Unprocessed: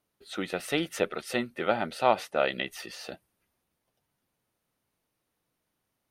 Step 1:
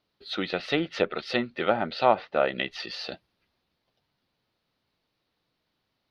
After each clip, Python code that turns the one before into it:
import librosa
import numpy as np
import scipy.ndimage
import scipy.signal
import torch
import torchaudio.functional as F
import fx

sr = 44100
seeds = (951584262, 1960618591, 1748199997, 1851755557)

y = fx.env_lowpass_down(x, sr, base_hz=1700.0, full_db=-23.5)
y = fx.high_shelf_res(y, sr, hz=6000.0, db=-12.0, q=3.0)
y = y * 10.0 ** (2.5 / 20.0)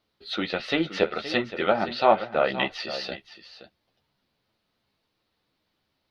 y = x + 10.0 ** (-13.5 / 20.0) * np.pad(x, (int(521 * sr / 1000.0), 0))[:len(x)]
y = fx.chorus_voices(y, sr, voices=4, hz=1.4, base_ms=12, depth_ms=3.0, mix_pct=35)
y = y * 10.0 ** (4.5 / 20.0)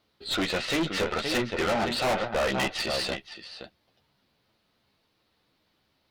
y = fx.tube_stage(x, sr, drive_db=31.0, bias=0.65)
y = y * 10.0 ** (8.0 / 20.0)